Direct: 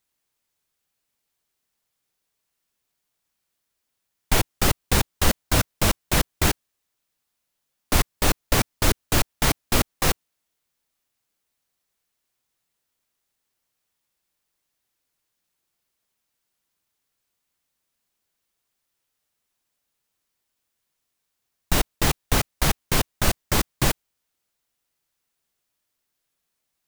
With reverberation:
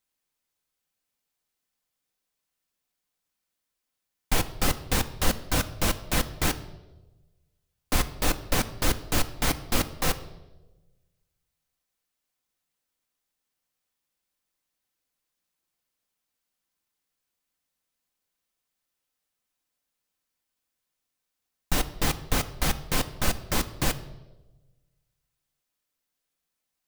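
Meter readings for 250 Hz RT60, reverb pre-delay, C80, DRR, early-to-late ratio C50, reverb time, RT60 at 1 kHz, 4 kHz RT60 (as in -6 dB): 1.3 s, 4 ms, 17.0 dB, 8.5 dB, 15.0 dB, 1.1 s, 0.90 s, 0.85 s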